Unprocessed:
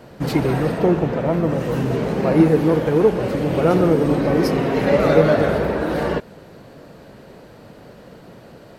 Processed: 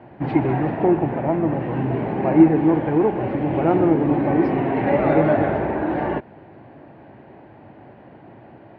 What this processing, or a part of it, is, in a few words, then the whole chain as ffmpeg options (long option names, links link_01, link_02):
bass cabinet: -af "highpass=81,equalizer=frequency=110:width_type=q:width=4:gain=3,equalizer=frequency=180:width_type=q:width=4:gain=-6,equalizer=frequency=330:width_type=q:width=4:gain=5,equalizer=frequency=480:width_type=q:width=4:gain=-9,equalizer=frequency=800:width_type=q:width=4:gain=7,equalizer=frequency=1300:width_type=q:width=4:gain=-7,lowpass=frequency=2400:width=0.5412,lowpass=frequency=2400:width=1.3066,volume=-1dB"